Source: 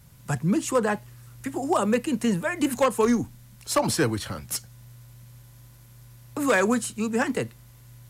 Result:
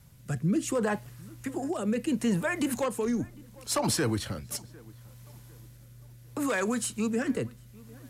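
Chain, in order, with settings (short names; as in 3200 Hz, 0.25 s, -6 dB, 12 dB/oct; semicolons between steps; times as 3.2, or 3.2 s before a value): limiter -18.5 dBFS, peak gain reduction 7 dB; rotary speaker horn 0.7 Hz; darkening echo 0.752 s, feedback 40%, low-pass 2000 Hz, level -23 dB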